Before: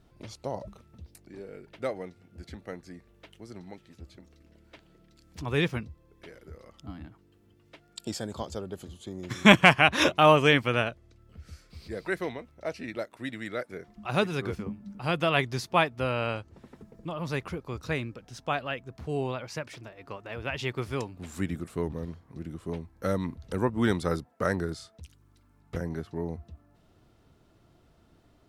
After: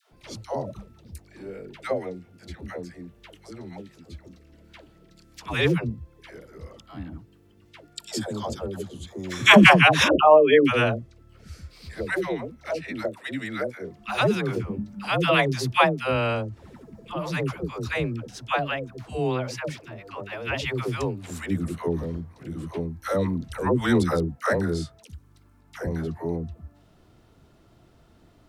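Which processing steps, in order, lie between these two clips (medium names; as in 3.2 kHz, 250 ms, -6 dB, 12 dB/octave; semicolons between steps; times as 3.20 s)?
10.08–10.65 s: resonances exaggerated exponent 3; phase dispersion lows, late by 122 ms, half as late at 540 Hz; trim +5 dB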